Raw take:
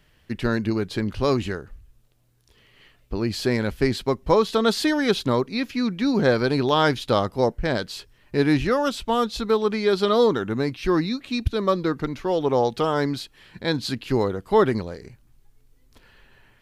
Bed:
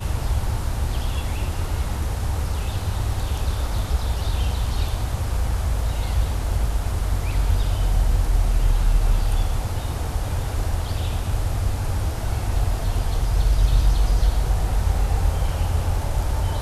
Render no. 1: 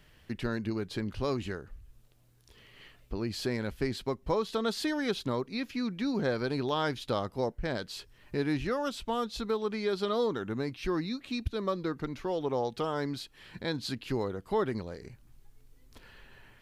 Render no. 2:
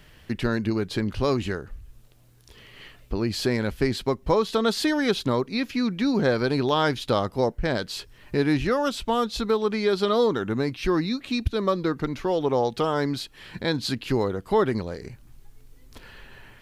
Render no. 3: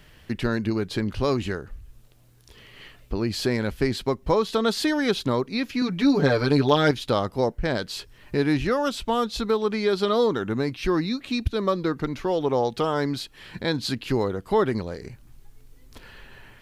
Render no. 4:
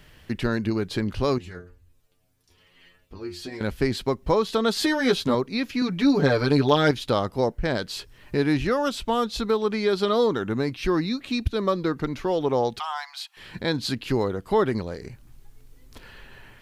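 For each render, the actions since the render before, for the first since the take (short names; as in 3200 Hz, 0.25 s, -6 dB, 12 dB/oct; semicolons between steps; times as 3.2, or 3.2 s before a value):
compressor 1.5:1, threshold -46 dBFS, peak gain reduction 12 dB
gain +8 dB
5.81–6.91 comb 6.9 ms, depth 89%
1.38–3.61 metallic resonator 87 Hz, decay 0.35 s, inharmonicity 0.002; 4.75–5.35 doubler 12 ms -3 dB; 12.79–13.37 rippled Chebyshev high-pass 710 Hz, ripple 3 dB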